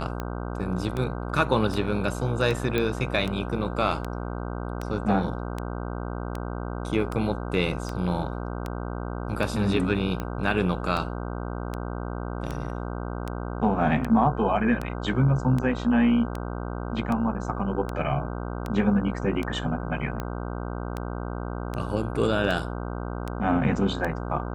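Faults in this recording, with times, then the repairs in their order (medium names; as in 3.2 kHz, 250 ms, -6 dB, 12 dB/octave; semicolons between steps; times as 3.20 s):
buzz 60 Hz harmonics 26 -32 dBFS
tick 78 rpm -17 dBFS
2.78 s: pop -13 dBFS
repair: de-click; de-hum 60 Hz, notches 26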